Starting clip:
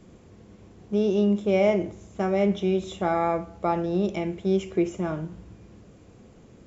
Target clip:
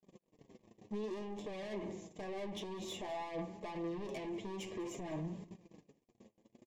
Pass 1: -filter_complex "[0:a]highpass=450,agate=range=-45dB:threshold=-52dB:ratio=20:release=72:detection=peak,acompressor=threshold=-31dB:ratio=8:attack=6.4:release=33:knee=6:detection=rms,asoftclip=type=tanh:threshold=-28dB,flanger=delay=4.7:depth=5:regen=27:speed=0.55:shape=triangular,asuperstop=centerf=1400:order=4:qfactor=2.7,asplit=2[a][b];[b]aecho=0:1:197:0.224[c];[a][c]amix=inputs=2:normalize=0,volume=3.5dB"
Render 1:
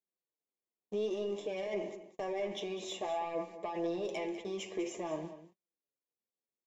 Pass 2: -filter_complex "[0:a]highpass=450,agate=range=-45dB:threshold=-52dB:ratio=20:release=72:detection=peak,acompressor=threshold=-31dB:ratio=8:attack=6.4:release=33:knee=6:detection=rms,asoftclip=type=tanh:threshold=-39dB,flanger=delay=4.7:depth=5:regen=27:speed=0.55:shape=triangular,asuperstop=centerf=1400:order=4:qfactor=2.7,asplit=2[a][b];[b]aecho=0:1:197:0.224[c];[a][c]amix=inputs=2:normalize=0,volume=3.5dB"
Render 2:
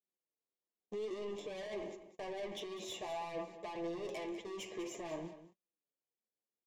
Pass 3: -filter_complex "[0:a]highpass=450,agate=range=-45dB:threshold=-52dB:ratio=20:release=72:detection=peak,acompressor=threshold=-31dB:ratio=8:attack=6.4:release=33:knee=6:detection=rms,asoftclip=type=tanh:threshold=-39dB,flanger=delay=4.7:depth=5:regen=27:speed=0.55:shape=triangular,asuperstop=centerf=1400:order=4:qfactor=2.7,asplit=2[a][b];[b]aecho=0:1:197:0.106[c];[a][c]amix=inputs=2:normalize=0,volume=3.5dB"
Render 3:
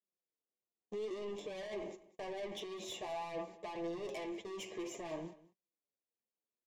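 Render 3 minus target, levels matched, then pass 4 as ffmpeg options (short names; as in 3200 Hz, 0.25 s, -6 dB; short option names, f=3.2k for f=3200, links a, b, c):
250 Hz band -3.5 dB
-filter_complex "[0:a]highpass=180,agate=range=-45dB:threshold=-52dB:ratio=20:release=72:detection=peak,acompressor=threshold=-31dB:ratio=8:attack=6.4:release=33:knee=6:detection=rms,asoftclip=type=tanh:threshold=-39dB,flanger=delay=4.7:depth=5:regen=27:speed=0.55:shape=triangular,asuperstop=centerf=1400:order=4:qfactor=2.7,asplit=2[a][b];[b]aecho=0:1:197:0.106[c];[a][c]amix=inputs=2:normalize=0,volume=3.5dB"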